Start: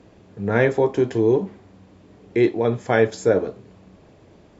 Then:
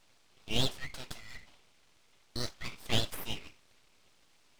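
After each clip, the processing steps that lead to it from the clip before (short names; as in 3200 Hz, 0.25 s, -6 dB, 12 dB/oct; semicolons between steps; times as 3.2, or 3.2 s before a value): Chebyshev high-pass 1000 Hz, order 6; full-wave rectifier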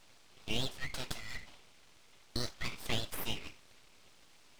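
compressor 4:1, threshold -35 dBFS, peak gain reduction 12 dB; gain +4.5 dB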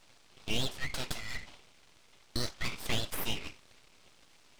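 sample leveller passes 1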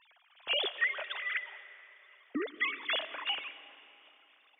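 sine-wave speech; digital reverb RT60 3.3 s, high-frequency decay 0.7×, pre-delay 75 ms, DRR 14.5 dB; gain -2 dB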